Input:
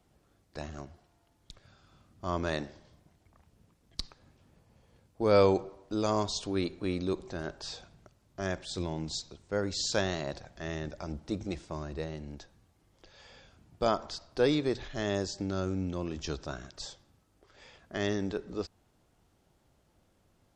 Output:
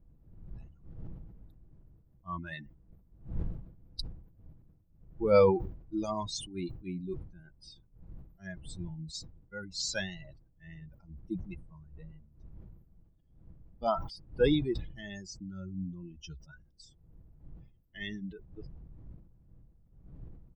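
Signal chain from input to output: expander on every frequency bin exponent 3; wind noise 84 Hz -52 dBFS; comb 6.1 ms, depth 31%; decay stretcher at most 86 dB/s; trim +2.5 dB

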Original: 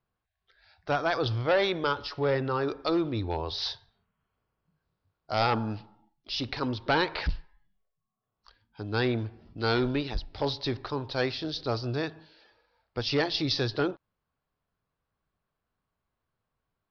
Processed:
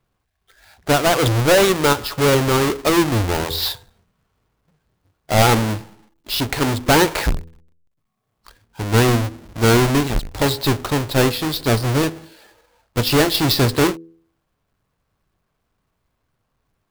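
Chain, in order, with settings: square wave that keeps the level; de-hum 82.68 Hz, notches 6; trim +7.5 dB

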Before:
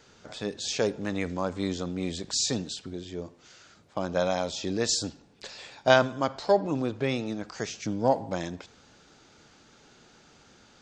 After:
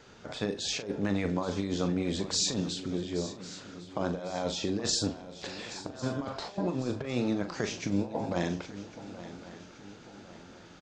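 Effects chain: treble shelf 4.2 kHz -8 dB; compressor with a negative ratio -31 dBFS, ratio -0.5; doubling 40 ms -9.5 dB; on a send: shuffle delay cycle 1102 ms, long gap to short 3:1, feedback 43%, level -15 dB

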